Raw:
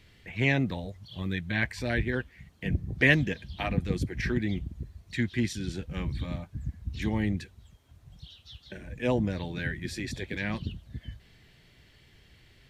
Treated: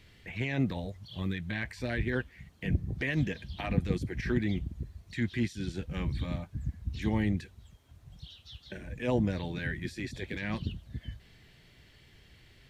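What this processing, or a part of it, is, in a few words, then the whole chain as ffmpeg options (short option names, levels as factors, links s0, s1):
de-esser from a sidechain: -filter_complex "[0:a]asplit=2[s0][s1];[s1]highpass=6700,apad=whole_len=559711[s2];[s0][s2]sidechaincompress=threshold=0.00178:ratio=3:attack=2.8:release=44"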